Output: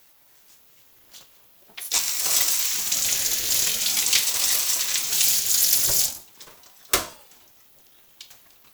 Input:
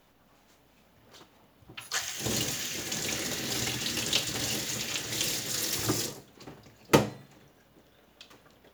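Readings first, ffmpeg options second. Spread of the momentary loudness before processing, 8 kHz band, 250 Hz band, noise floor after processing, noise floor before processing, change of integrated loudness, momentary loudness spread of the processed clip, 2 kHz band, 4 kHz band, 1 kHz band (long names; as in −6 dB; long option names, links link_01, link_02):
16 LU, +12.0 dB, −11.5 dB, −55 dBFS, −63 dBFS, +10.0 dB, 7 LU, +4.0 dB, +7.5 dB, 0.0 dB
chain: -af "asoftclip=type=tanh:threshold=-12dB,crystalizer=i=8:c=0,aeval=exprs='val(0)*sin(2*PI*540*n/s+540*0.65/0.44*sin(2*PI*0.44*n/s))':channel_layout=same,volume=-3dB"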